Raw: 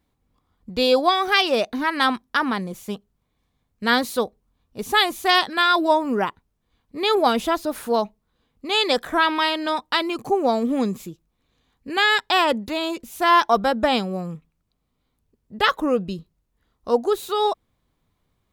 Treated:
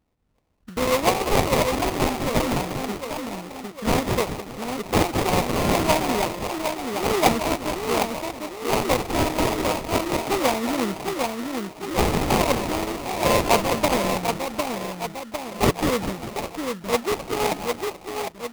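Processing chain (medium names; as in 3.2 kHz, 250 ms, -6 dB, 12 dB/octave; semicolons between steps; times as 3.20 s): harmonic-percussive split harmonic -4 dB; two-band feedback delay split 970 Hz, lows 753 ms, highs 197 ms, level -4 dB; sample-rate reducer 1.6 kHz, jitter 20%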